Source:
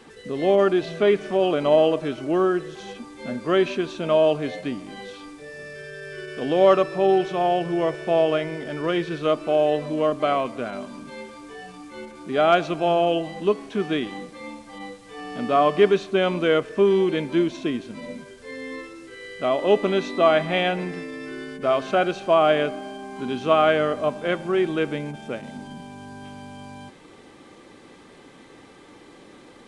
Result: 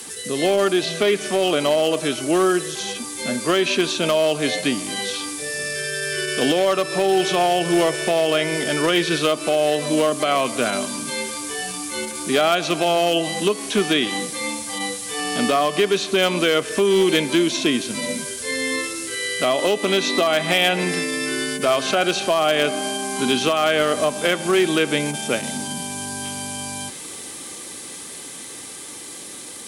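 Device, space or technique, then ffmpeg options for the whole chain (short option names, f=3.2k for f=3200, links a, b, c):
FM broadcast chain: -filter_complex "[0:a]highpass=f=52:w=0.5412,highpass=f=52:w=1.3066,dynaudnorm=f=750:g=11:m=11.5dB,acrossover=split=160|4800[a][b][c];[a]acompressor=threshold=-43dB:ratio=4[d];[b]acompressor=threshold=-16dB:ratio=4[e];[c]acompressor=threshold=-60dB:ratio=4[f];[d][e][f]amix=inputs=3:normalize=0,aemphasis=mode=production:type=75fm,alimiter=limit=-13.5dB:level=0:latency=1:release=243,asoftclip=type=hard:threshold=-16dB,lowpass=f=15k:w=0.5412,lowpass=f=15k:w=1.3066,aemphasis=mode=production:type=75fm,volume=5dB"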